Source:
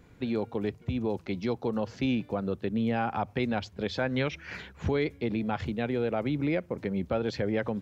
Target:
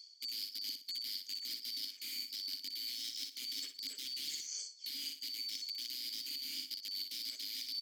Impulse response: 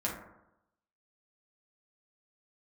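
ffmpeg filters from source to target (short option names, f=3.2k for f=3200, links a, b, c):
-filter_complex "[0:a]afftfilt=real='real(if(lt(b,736),b+184*(1-2*mod(floor(b/184),2)),b),0)':imag='imag(if(lt(b,736),b+184*(1-2*mod(floor(b/184),2)),b),0)':win_size=2048:overlap=0.75,acrossover=split=230[a][b];[a]acompressor=threshold=-42dB:ratio=8[c];[c][b]amix=inputs=2:normalize=0,afreqshift=370,aeval=exprs='(mod(14.1*val(0)+1,2)-1)/14.1':c=same,asplit=3[d][e][f];[d]bandpass=f=270:t=q:w=8,volume=0dB[g];[e]bandpass=f=2.29k:t=q:w=8,volume=-6dB[h];[f]bandpass=f=3.01k:t=q:w=8,volume=-9dB[i];[g][h][i]amix=inputs=3:normalize=0,highshelf=f=3.7k:g=6.5,aecho=1:1:61|122|183|244:0.355|0.138|0.054|0.021,areverse,acompressor=threshold=-59dB:ratio=10,areverse,aexciter=amount=3.5:drive=4.1:freq=3.3k,volume=11dB"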